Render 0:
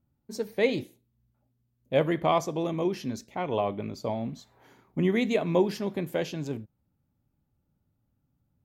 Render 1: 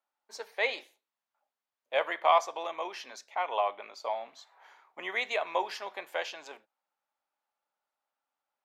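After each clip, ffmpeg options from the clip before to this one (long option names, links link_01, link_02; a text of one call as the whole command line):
ffmpeg -i in.wav -af "highpass=frequency=760:width=0.5412,highpass=frequency=760:width=1.3066,aemphasis=mode=reproduction:type=bsi,volume=4.5dB" out.wav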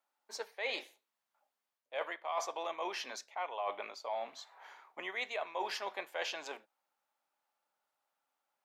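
ffmpeg -i in.wav -af "highpass=130,areverse,acompressor=threshold=-37dB:ratio=8,areverse,volume=2.5dB" out.wav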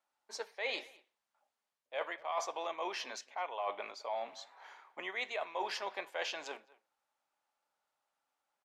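ffmpeg -i in.wav -filter_complex "[0:a]lowpass=10000,asplit=2[link_01][link_02];[link_02]adelay=210,highpass=300,lowpass=3400,asoftclip=type=hard:threshold=-32dB,volume=-21dB[link_03];[link_01][link_03]amix=inputs=2:normalize=0" out.wav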